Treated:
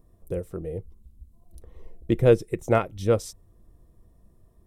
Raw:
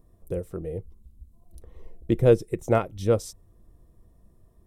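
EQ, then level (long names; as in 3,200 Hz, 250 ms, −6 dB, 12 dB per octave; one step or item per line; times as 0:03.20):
dynamic equaliser 2,100 Hz, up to +4 dB, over −41 dBFS, Q 0.81
0.0 dB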